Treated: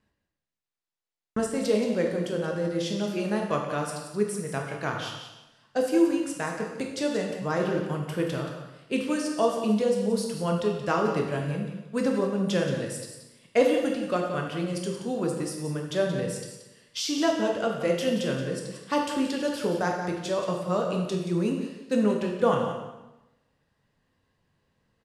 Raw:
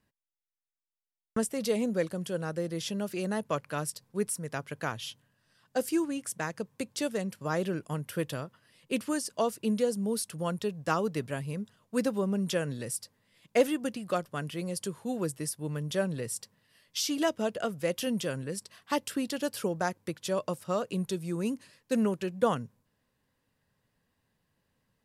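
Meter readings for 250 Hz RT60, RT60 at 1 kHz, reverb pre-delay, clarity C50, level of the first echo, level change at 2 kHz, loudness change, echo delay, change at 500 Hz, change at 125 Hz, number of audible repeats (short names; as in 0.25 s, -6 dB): 1.0 s, 1.0 s, 8 ms, 3.5 dB, -10.0 dB, +4.0 dB, +4.5 dB, 0.177 s, +5.5 dB, +4.0 dB, 1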